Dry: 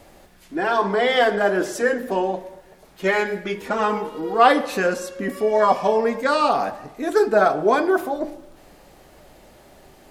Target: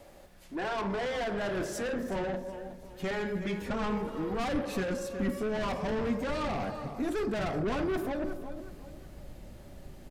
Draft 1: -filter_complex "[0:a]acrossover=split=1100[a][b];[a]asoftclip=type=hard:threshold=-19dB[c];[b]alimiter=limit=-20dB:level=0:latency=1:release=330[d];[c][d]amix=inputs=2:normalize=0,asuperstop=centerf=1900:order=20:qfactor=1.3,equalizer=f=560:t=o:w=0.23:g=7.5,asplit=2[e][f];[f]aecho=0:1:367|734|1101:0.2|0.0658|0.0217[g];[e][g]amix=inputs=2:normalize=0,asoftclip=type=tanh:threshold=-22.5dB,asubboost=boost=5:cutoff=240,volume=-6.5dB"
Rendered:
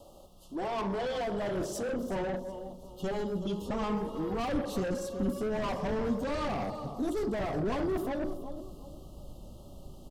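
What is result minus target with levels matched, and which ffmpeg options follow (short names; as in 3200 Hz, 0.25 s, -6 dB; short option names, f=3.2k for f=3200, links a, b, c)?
2000 Hz band -4.5 dB
-filter_complex "[0:a]acrossover=split=1100[a][b];[a]asoftclip=type=hard:threshold=-19dB[c];[b]alimiter=limit=-20dB:level=0:latency=1:release=330[d];[c][d]amix=inputs=2:normalize=0,equalizer=f=560:t=o:w=0.23:g=7.5,asplit=2[e][f];[f]aecho=0:1:367|734|1101:0.2|0.0658|0.0217[g];[e][g]amix=inputs=2:normalize=0,asoftclip=type=tanh:threshold=-22.5dB,asubboost=boost=5:cutoff=240,volume=-6.5dB"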